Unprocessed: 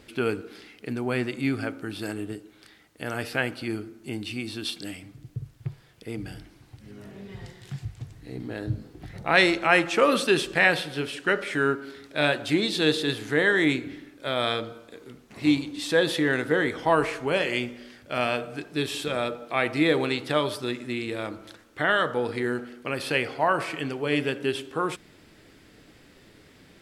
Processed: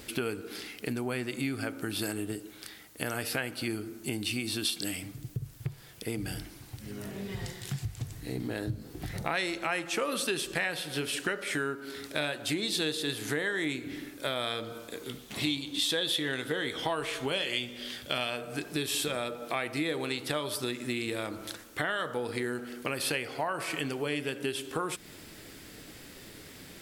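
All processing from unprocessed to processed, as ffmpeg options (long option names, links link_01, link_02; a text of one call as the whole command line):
ffmpeg -i in.wav -filter_complex "[0:a]asettb=1/sr,asplit=3[link_01][link_02][link_03];[link_01]atrim=end=15.044[link_04];[link_02]atrim=start=15.04:end=18.3,asetpts=PTS-STARTPTS,afade=type=in:duration=0.004:curve=qsin,afade=type=out:start_time=3.256:duration=0.004:curve=qsin,equalizer=frequency=3400:width=3:gain=11,asplit=2[link_05][link_06];[link_06]adelay=15,volume=-13.5dB[link_07];[link_05][link_07]amix=inputs=2:normalize=0,atrim=end_sample=143766[link_08];[link_03]atrim=start=18.296[link_09];[link_04][link_08]acrossfade=duration=0.004:curve1=hsin:curve2=qsin[link_10];[link_10][link_09]acrossfade=duration=0.004:curve1=qsin:curve2=hsin,highshelf=frequency=9800:gain=10.5,acompressor=threshold=-34dB:ratio=5,highshelf=frequency=4100:gain=6,volume=3.5dB" out.wav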